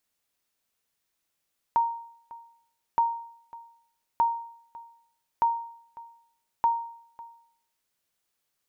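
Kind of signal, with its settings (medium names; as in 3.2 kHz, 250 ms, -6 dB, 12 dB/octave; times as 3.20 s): sonar ping 929 Hz, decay 0.64 s, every 1.22 s, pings 5, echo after 0.55 s, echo -21 dB -16 dBFS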